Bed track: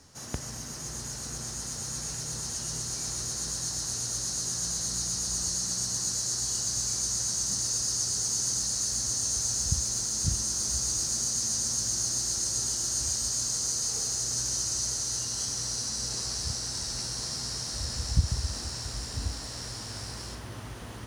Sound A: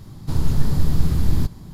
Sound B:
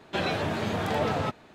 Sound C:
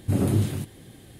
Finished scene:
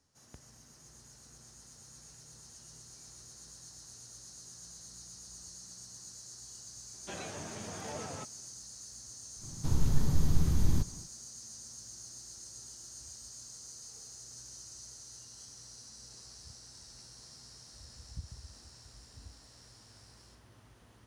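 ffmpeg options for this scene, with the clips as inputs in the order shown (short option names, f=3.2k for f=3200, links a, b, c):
-filter_complex "[0:a]volume=-19dB[a];[2:a]atrim=end=1.54,asetpts=PTS-STARTPTS,volume=-15dB,afade=t=in:d=0.004:c=hsin,afade=t=out:st=1.536:d=0.004:c=hsin,adelay=6940[b];[1:a]atrim=end=1.73,asetpts=PTS-STARTPTS,volume=-8.5dB,afade=t=in:d=0.1,afade=t=out:st=1.63:d=0.1,adelay=9360[c];[a][b][c]amix=inputs=3:normalize=0"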